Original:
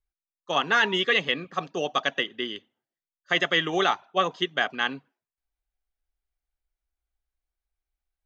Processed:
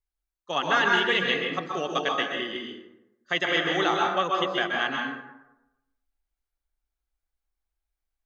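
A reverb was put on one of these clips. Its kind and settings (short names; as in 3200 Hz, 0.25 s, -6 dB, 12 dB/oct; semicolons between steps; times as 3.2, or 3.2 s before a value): plate-style reverb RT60 0.92 s, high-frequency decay 0.5×, pre-delay 0.115 s, DRR -1 dB; gain -3 dB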